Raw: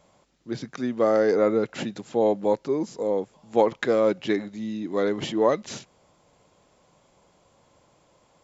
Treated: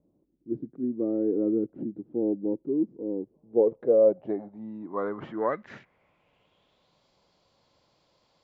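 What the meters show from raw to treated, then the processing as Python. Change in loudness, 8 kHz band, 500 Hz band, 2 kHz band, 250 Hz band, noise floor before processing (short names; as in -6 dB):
-3.0 dB, n/a, -3.5 dB, -13.0 dB, -1.0 dB, -63 dBFS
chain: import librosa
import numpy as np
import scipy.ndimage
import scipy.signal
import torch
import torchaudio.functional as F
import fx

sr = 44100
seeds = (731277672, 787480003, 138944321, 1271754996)

y = fx.filter_sweep_lowpass(x, sr, from_hz=320.0, to_hz=4500.0, start_s=3.19, end_s=7.05, q=3.9)
y = F.gain(torch.from_numpy(y), -8.5).numpy()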